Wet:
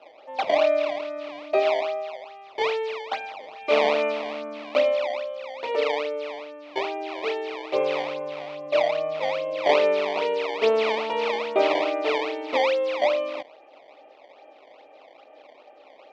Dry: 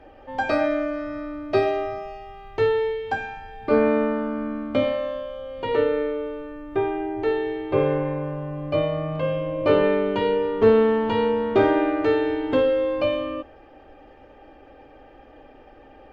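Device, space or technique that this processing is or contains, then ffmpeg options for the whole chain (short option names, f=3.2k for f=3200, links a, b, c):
circuit-bent sampling toy: -filter_complex "[0:a]asettb=1/sr,asplit=3[a][b][c];[a]atrim=end=3.404[d];[b]atrim=start=3.4:end=4.12,asetpts=PTS-STARTPTS,afade=t=in:d=0.004:c=qsin,afade=t=out:st=0.716:d=0.004:c=qsin,equalizer=f=2.7k:w=1.7:g=12[e];[c]atrim=start=4.116[f];[d][e]acrossfade=d=0.004:c1=hsin:c2=qsin[g];[g][f]acrossfade=d=0.004:c1=qsin:c2=hsin,acrusher=samples=19:mix=1:aa=0.000001:lfo=1:lforange=30.4:lforate=2.4,highpass=500,equalizer=f=630:t=q:w=4:g=9,equalizer=f=1.6k:t=q:w=4:g=-9,equalizer=f=2.4k:t=q:w=4:g=6,lowpass=f=4.1k:w=0.5412,lowpass=f=4.1k:w=1.3066,volume=-2dB"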